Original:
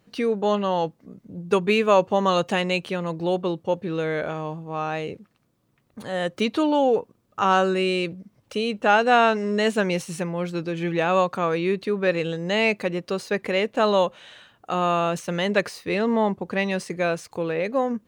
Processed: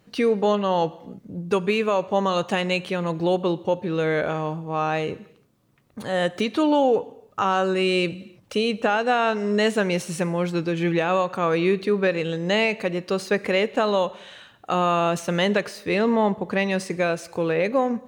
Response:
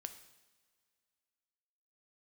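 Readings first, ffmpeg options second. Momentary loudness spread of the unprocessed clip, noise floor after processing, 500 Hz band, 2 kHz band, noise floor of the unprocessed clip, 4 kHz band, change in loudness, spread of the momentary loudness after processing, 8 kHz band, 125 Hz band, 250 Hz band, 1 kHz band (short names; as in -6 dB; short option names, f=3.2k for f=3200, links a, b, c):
10 LU, -57 dBFS, +0.5 dB, 0.0 dB, -66 dBFS, +0.5 dB, +0.5 dB, 7 LU, +1.5 dB, +2.0 dB, +1.5 dB, -1.0 dB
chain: -filter_complex "[0:a]alimiter=limit=-15dB:level=0:latency=1:release=440,asplit=2[a][b];[1:a]atrim=start_sample=2205,afade=t=out:st=0.31:d=0.01,atrim=end_sample=14112,asetrate=34398,aresample=44100[c];[b][c]afir=irnorm=-1:irlink=0,volume=-3dB[d];[a][d]amix=inputs=2:normalize=0"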